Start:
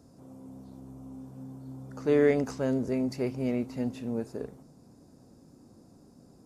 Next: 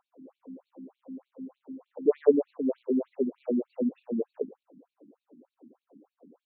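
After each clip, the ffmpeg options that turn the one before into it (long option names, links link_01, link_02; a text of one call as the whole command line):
ffmpeg -i in.wav -af "acrusher=bits=5:mode=log:mix=0:aa=0.000001,equalizer=frequency=125:width_type=o:width=1:gain=-6,equalizer=frequency=250:width_type=o:width=1:gain=5,equalizer=frequency=500:width_type=o:width=1:gain=9,equalizer=frequency=1000:width_type=o:width=1:gain=3,equalizer=frequency=2000:width_type=o:width=1:gain=-12,equalizer=frequency=4000:width_type=o:width=1:gain=-8,afftfilt=real='re*between(b*sr/1024,220*pow(3200/220,0.5+0.5*sin(2*PI*3.3*pts/sr))/1.41,220*pow(3200/220,0.5+0.5*sin(2*PI*3.3*pts/sr))*1.41)':imag='im*between(b*sr/1024,220*pow(3200/220,0.5+0.5*sin(2*PI*3.3*pts/sr))/1.41,220*pow(3200/220,0.5+0.5*sin(2*PI*3.3*pts/sr))*1.41)':win_size=1024:overlap=0.75" out.wav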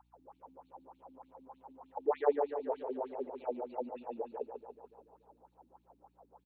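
ffmpeg -i in.wav -af "highpass=frequency=860:width_type=q:width=8.2,aeval=exprs='val(0)+0.000251*(sin(2*PI*60*n/s)+sin(2*PI*2*60*n/s)/2+sin(2*PI*3*60*n/s)/3+sin(2*PI*4*60*n/s)/4+sin(2*PI*5*60*n/s)/5)':channel_layout=same,aecho=1:1:144|288|432|576|720|864|1008|1152:0.422|0.253|0.152|0.0911|0.0547|0.0328|0.0197|0.0118" out.wav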